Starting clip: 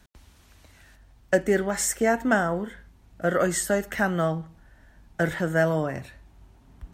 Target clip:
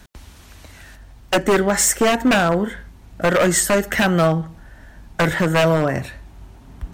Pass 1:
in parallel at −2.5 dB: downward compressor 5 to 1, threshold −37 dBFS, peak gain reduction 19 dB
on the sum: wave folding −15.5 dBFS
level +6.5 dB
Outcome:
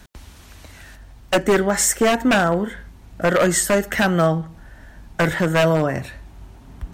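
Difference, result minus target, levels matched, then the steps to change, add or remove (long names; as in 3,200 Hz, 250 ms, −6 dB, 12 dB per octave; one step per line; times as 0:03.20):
downward compressor: peak gain reduction +8 dB
change: downward compressor 5 to 1, threshold −27 dBFS, peak gain reduction 11 dB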